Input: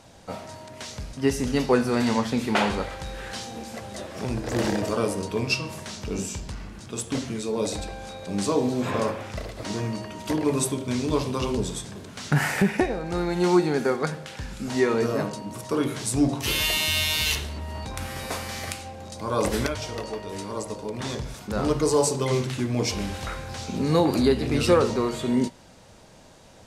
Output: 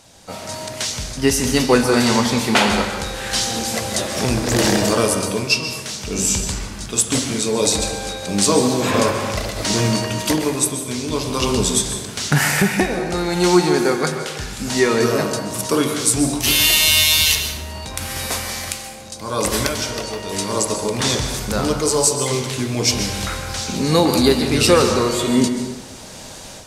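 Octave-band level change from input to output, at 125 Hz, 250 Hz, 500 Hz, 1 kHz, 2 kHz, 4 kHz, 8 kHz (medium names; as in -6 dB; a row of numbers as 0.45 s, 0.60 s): +5.5 dB, +6.0 dB, +6.0 dB, +7.0 dB, +8.5 dB, +11.5 dB, +14.0 dB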